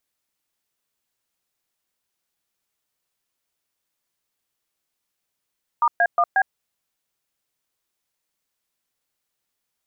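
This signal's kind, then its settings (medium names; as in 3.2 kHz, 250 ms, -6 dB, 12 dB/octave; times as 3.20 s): DTMF "*A1B", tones 59 ms, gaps 121 ms, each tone -17 dBFS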